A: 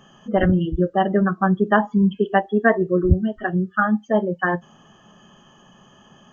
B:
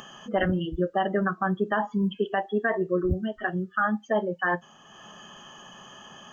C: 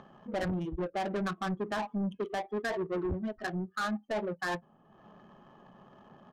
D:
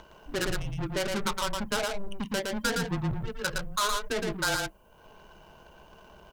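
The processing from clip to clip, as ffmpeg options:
ffmpeg -i in.wav -af "lowshelf=frequency=450:gain=-12,acompressor=mode=upward:threshold=-40dB:ratio=2.5,alimiter=limit=-16.5dB:level=0:latency=1:release=35,volume=1.5dB" out.wav
ffmpeg -i in.wav -af "aresample=16000,asoftclip=type=tanh:threshold=-24.5dB,aresample=44100,adynamicsmooth=sensitivity=4:basefreq=590,volume=-3dB" out.wav
ffmpeg -i in.wav -af "crystalizer=i=6.5:c=0,afreqshift=-200,aecho=1:1:114:0.668" out.wav

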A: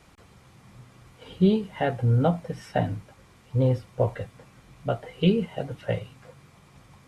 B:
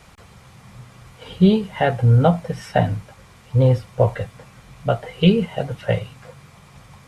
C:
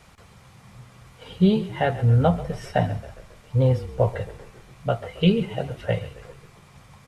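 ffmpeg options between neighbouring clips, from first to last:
ffmpeg -i in.wav -af "equalizer=frequency=310:width_type=o:width=0.65:gain=-8,volume=8dB" out.wav
ffmpeg -i in.wav -filter_complex "[0:a]asplit=6[link_01][link_02][link_03][link_04][link_05][link_06];[link_02]adelay=136,afreqshift=-32,volume=-16dB[link_07];[link_03]adelay=272,afreqshift=-64,volume=-21.4dB[link_08];[link_04]adelay=408,afreqshift=-96,volume=-26.7dB[link_09];[link_05]adelay=544,afreqshift=-128,volume=-32.1dB[link_10];[link_06]adelay=680,afreqshift=-160,volume=-37.4dB[link_11];[link_01][link_07][link_08][link_09][link_10][link_11]amix=inputs=6:normalize=0,volume=-4dB" out.wav

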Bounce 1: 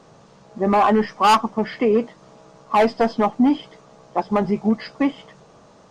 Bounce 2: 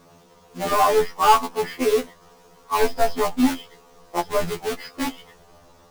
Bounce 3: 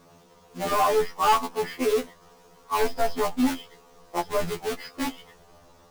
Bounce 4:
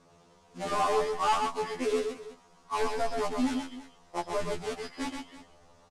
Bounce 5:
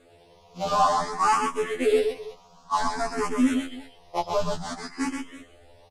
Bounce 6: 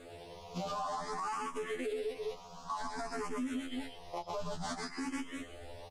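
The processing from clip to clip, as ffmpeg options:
ffmpeg -i in.wav -af "acrusher=bits=2:mode=log:mix=0:aa=0.000001,asubboost=boost=7.5:cutoff=57,afftfilt=real='re*2*eq(mod(b,4),0)':imag='im*2*eq(mod(b,4),0)':win_size=2048:overlap=0.75" out.wav
ffmpeg -i in.wav -af "asoftclip=type=tanh:threshold=-11dB,volume=-2.5dB" out.wav
ffmpeg -i in.wav -af "lowpass=frequency=9700:width=0.5412,lowpass=frequency=9700:width=1.3066,aecho=1:1:127|331:0.562|0.158,volume=-6dB" out.wav
ffmpeg -i in.wav -filter_complex "[0:a]asplit=2[link_01][link_02];[link_02]afreqshift=0.54[link_03];[link_01][link_03]amix=inputs=2:normalize=1,volume=8dB" out.wav
ffmpeg -i in.wav -af "acompressor=threshold=-32dB:ratio=3,alimiter=level_in=10.5dB:limit=-24dB:level=0:latency=1:release=438,volume=-10.5dB,volume=5dB" out.wav

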